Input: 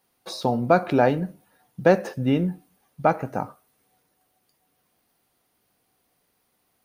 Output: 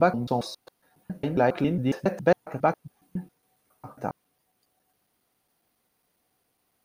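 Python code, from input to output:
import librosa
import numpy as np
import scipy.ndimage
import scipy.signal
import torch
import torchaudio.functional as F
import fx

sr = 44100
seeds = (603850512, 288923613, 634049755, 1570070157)

y = fx.block_reorder(x, sr, ms=137.0, group=6)
y = y * librosa.db_to_amplitude(-3.0)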